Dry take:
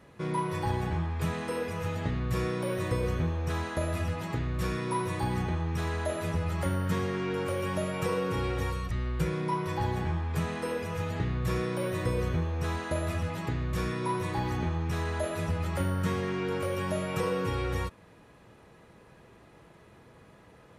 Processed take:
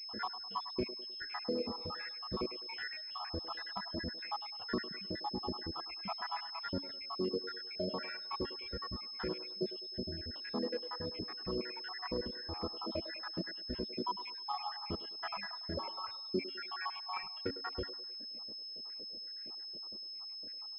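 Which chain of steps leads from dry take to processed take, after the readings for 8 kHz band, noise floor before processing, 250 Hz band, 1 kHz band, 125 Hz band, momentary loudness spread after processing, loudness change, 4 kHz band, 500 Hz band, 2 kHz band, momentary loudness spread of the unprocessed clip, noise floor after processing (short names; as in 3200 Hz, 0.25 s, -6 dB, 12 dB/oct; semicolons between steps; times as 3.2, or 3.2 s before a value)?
under -25 dB, -56 dBFS, -9.5 dB, -7.5 dB, -20.0 dB, 5 LU, -8.5 dB, +5.5 dB, -9.5 dB, -8.0 dB, 3 LU, -46 dBFS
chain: random spectral dropouts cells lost 83%; de-hum 141.3 Hz, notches 2; limiter -28 dBFS, peak gain reduction 8.5 dB; reverb removal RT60 1.6 s; vocal rider 0.5 s; resonant low shelf 180 Hz -7.5 dB, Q 3; on a send: band-limited delay 0.103 s, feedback 43%, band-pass 680 Hz, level -11 dB; on the sum: pulse-width modulation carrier 5200 Hz; gain +1.5 dB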